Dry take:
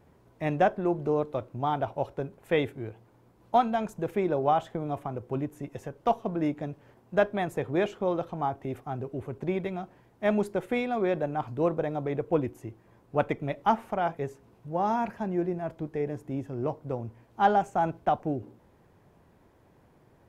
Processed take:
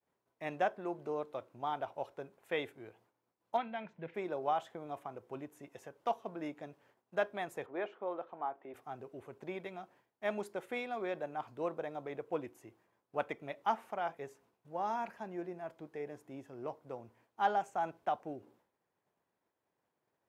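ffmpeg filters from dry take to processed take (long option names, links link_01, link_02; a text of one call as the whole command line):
ffmpeg -i in.wav -filter_complex "[0:a]asplit=3[link_01][link_02][link_03];[link_01]afade=type=out:start_time=3.56:duration=0.02[link_04];[link_02]highpass=120,equalizer=frequency=160:width_type=q:width=4:gain=8,equalizer=frequency=410:width_type=q:width=4:gain=-7,equalizer=frequency=760:width_type=q:width=4:gain=-6,equalizer=frequency=1200:width_type=q:width=4:gain=-9,equalizer=frequency=2100:width_type=q:width=4:gain=6,lowpass=frequency=3400:width=0.5412,lowpass=frequency=3400:width=1.3066,afade=type=in:start_time=3.56:duration=0.02,afade=type=out:start_time=4.14:duration=0.02[link_05];[link_03]afade=type=in:start_time=4.14:duration=0.02[link_06];[link_04][link_05][link_06]amix=inputs=3:normalize=0,asettb=1/sr,asplit=3[link_07][link_08][link_09];[link_07]atrim=end=7.664[link_10];[link_08]atrim=start=7.66:end=8.74,asetpts=PTS-STARTPTS,afade=type=in:duration=0.004:curve=qsin,afade=type=out:start_time=1.076:duration=0.004:curve=qsin,highpass=280,lowpass=2000[link_11];[link_09]atrim=start=8.736[link_12];[link_10][link_11]acrossfade=duration=0.004:curve1=hsin:curve2=qsin[link_13];[link_13][link_12]acrossfade=duration=0.004:curve1=qsin:curve2=hsin,agate=range=-33dB:threshold=-51dB:ratio=3:detection=peak,highpass=frequency=680:poles=1,volume=-6dB" out.wav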